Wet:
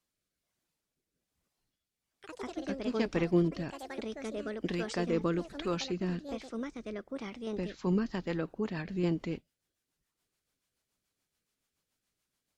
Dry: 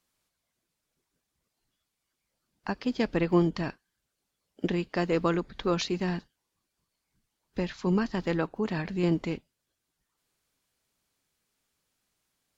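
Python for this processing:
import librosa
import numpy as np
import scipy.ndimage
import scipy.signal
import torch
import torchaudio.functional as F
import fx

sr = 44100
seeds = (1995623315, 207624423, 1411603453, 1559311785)

y = fx.echo_pitch(x, sr, ms=298, semitones=4, count=3, db_per_echo=-6.0)
y = fx.rotary_switch(y, sr, hz=1.2, then_hz=7.0, switch_at_s=7.57)
y = F.gain(torch.from_numpy(y), -3.0).numpy()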